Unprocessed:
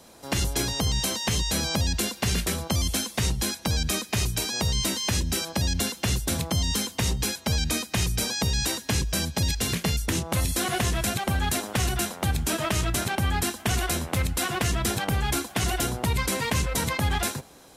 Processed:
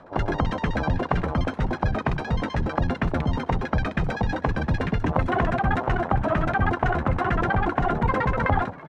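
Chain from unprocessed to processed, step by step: LFO low-pass saw down 7.8 Hz 650–1800 Hz; granular stretch 0.5×, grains 23 ms; frequency-shifting echo 334 ms, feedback 45%, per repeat +61 Hz, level -21 dB; trim +4 dB

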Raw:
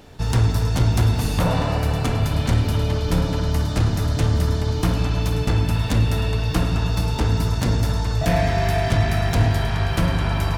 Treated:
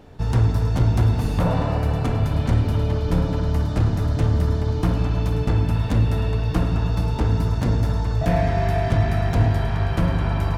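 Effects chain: treble shelf 2.2 kHz -11 dB

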